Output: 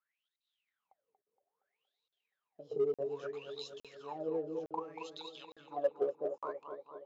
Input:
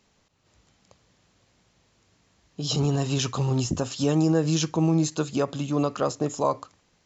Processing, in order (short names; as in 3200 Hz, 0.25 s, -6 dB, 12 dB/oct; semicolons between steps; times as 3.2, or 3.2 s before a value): G.711 law mismatch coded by A; wah 0.62 Hz 410–3900 Hz, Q 21; darkening echo 0.234 s, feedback 65%, low-pass 2000 Hz, level -7 dB; in parallel at -6.5 dB: hard clip -34.5 dBFS, distortion -13 dB; on the sum: transient shaper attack +3 dB, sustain -1 dB; crackling interface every 0.86 s, samples 2048, zero, from 0.36; gain +1 dB